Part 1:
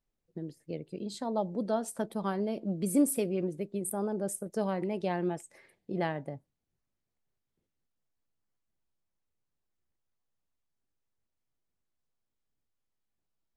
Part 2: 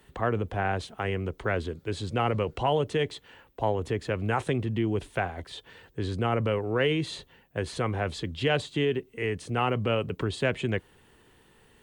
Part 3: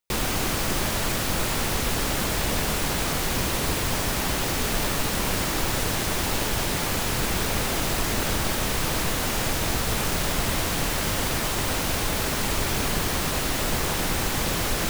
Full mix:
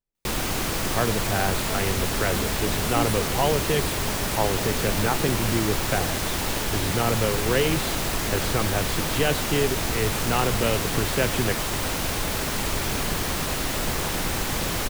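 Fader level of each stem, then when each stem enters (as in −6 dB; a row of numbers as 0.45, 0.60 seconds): −5.5, +2.0, −1.0 decibels; 0.00, 0.75, 0.15 seconds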